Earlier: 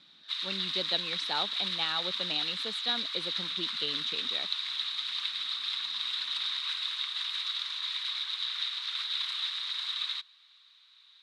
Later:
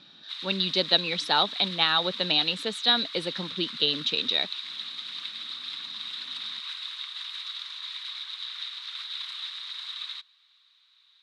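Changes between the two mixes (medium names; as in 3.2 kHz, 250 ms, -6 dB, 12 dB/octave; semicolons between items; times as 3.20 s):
speech +9.5 dB; background -3.0 dB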